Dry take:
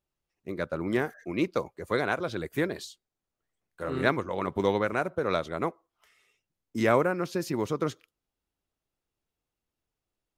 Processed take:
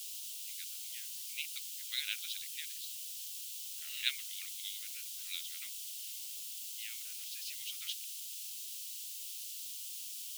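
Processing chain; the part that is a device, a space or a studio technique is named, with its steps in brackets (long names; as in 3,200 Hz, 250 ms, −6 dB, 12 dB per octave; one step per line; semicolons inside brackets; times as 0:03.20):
shortwave radio (band-pass filter 330–2,800 Hz; amplitude tremolo 0.5 Hz, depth 79%; white noise bed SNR 19 dB)
elliptic high-pass filter 2,900 Hz, stop band 70 dB
level +13.5 dB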